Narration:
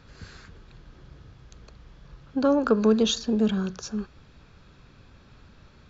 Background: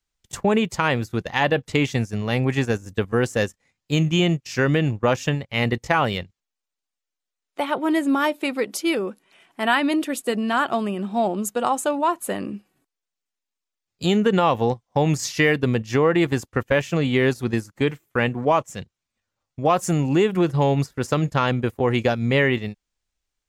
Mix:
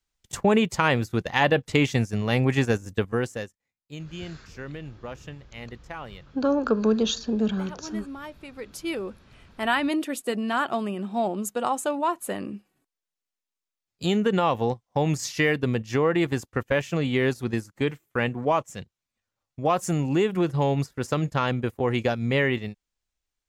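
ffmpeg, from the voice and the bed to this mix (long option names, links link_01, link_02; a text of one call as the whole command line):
ffmpeg -i stem1.wav -i stem2.wav -filter_complex "[0:a]adelay=4000,volume=-1.5dB[link_01];[1:a]volume=13.5dB,afade=type=out:start_time=2.89:duration=0.62:silence=0.133352,afade=type=in:start_time=8.5:duration=0.75:silence=0.199526[link_02];[link_01][link_02]amix=inputs=2:normalize=0" out.wav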